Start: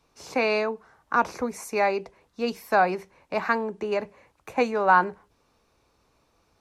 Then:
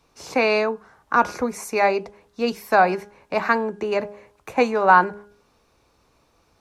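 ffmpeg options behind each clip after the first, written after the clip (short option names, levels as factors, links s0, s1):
-af "bandreject=f=205.3:t=h:w=4,bandreject=f=410.6:t=h:w=4,bandreject=f=615.9:t=h:w=4,bandreject=f=821.2:t=h:w=4,bandreject=f=1026.5:t=h:w=4,bandreject=f=1231.8:t=h:w=4,bandreject=f=1437.1:t=h:w=4,bandreject=f=1642.4:t=h:w=4,volume=1.68"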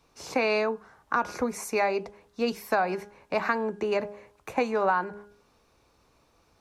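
-af "acompressor=threshold=0.112:ratio=6,volume=0.75"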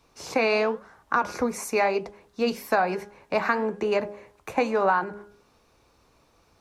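-af "flanger=delay=2.7:depth=9.2:regen=-83:speed=1:shape=triangular,volume=2.24"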